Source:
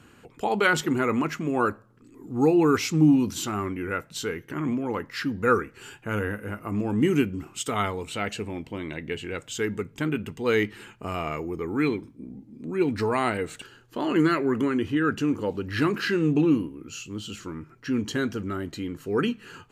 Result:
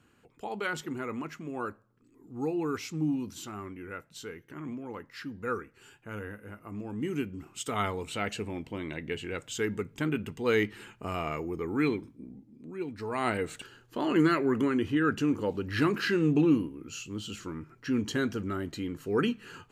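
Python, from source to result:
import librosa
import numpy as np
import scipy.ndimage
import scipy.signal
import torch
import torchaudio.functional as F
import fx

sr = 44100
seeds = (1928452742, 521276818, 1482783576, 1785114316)

y = fx.gain(x, sr, db=fx.line((7.03, -11.5), (7.9, -3.0), (12.07, -3.0), (12.97, -14.0), (13.3, -2.5)))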